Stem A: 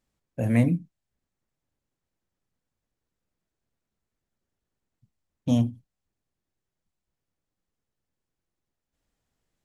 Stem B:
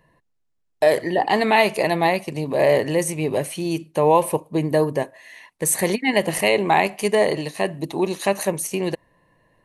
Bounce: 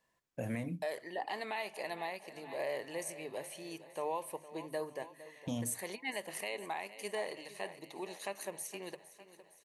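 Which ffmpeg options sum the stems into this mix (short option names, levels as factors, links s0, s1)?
-filter_complex "[0:a]highpass=43,acompressor=threshold=0.0447:ratio=2,volume=1[s0];[1:a]lowshelf=f=180:g=-6.5,bandreject=f=50:t=h:w=6,bandreject=f=100:t=h:w=6,bandreject=f=150:t=h:w=6,volume=0.168,asplit=2[s1][s2];[s2]volume=0.158,aecho=0:1:460|920|1380|1840|2300|2760|3220|3680|4140:1|0.57|0.325|0.185|0.106|0.0602|0.0343|0.0195|0.0111[s3];[s0][s1][s3]amix=inputs=3:normalize=0,lowshelf=f=370:g=-10.5,alimiter=level_in=1.41:limit=0.0631:level=0:latency=1:release=280,volume=0.708"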